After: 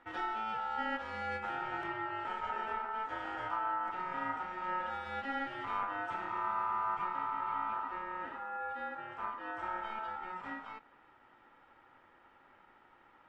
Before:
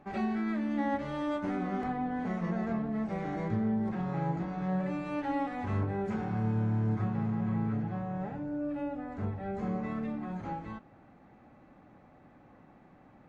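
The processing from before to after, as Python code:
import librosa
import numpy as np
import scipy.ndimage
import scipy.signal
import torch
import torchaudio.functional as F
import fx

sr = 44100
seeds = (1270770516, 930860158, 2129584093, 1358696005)

y = x * np.sin(2.0 * np.pi * 1100.0 * np.arange(len(x)) / sr)
y = y * librosa.db_to_amplitude(-2.5)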